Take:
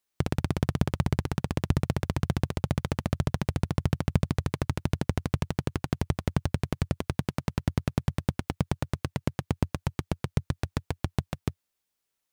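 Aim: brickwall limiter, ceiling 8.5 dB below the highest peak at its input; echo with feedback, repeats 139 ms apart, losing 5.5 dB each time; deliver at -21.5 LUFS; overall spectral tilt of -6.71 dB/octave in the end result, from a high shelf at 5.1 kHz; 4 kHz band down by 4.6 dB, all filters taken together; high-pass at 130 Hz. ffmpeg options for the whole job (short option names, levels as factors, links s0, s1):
-af "highpass=130,equalizer=f=4000:t=o:g=-9,highshelf=f=5100:g=6,alimiter=limit=0.112:level=0:latency=1,aecho=1:1:139|278|417|556|695|834|973:0.531|0.281|0.149|0.079|0.0419|0.0222|0.0118,volume=6.31"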